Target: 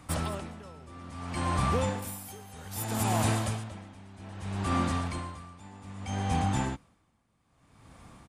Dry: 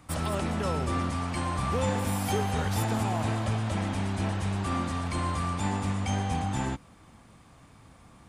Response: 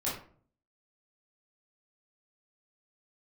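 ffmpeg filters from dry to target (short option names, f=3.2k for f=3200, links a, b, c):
-filter_complex "[0:a]aresample=32000,aresample=44100,asettb=1/sr,asplit=3[a][b][c];[a]atrim=end=2.024[d];[b]atrim=start=2.02:end=3.64,asetpts=PTS-STARTPTS,afade=t=in:d=0.004:c=qsin,afade=t=out:st=1.616:d=0.004:c=qsin,aemphasis=mode=production:type=50fm[e];[c]atrim=start=3.636[f];[d][e]acrossfade=d=0.004:c1=hsin:c2=qsin[g];[g][f]acrossfade=d=0.004:c1=qsin:c2=hsin,aeval=exprs='val(0)*pow(10,-22*(0.5-0.5*cos(2*PI*0.62*n/s))/20)':c=same,volume=2.5dB"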